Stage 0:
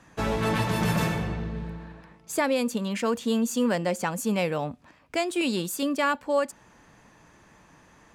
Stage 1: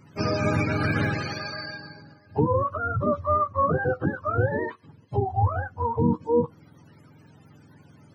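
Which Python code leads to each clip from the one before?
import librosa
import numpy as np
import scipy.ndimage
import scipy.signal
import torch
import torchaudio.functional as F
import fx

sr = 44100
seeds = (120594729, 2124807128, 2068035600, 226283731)

y = fx.octave_mirror(x, sr, pivot_hz=520.0)
y = y * librosa.db_to_amplitude(3.0)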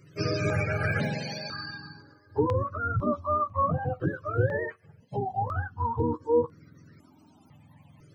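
y = fx.phaser_held(x, sr, hz=2.0, low_hz=230.0, high_hz=3100.0)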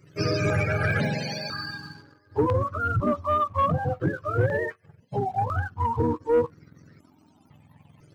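y = fx.leveller(x, sr, passes=1)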